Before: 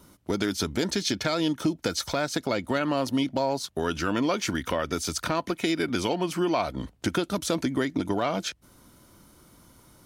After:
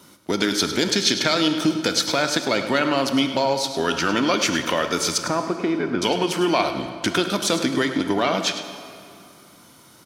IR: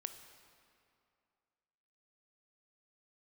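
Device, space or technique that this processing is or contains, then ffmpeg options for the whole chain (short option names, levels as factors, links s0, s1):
PA in a hall: -filter_complex "[0:a]asettb=1/sr,asplit=3[s0][s1][s2];[s0]atrim=end=5.184[s3];[s1]atrim=start=5.18:end=6.02,asetpts=PTS-STARTPTS,afade=t=in:d=0.004:c=qsin,afade=t=out:st=0.836:d=0.004:c=qsin,lowpass=1200[s4];[s2]atrim=start=6.016[s5];[s3][s4]acrossfade=d=0.004:c1=hsin:c2=qsin[s6];[s6][s5]acrossfade=d=0.004:c1=qsin:c2=hsin,highpass=140,equalizer=f=3400:t=o:w=2.5:g=6,aecho=1:1:103:0.251[s7];[1:a]atrim=start_sample=2205[s8];[s7][s8]afir=irnorm=-1:irlink=0,volume=2.24"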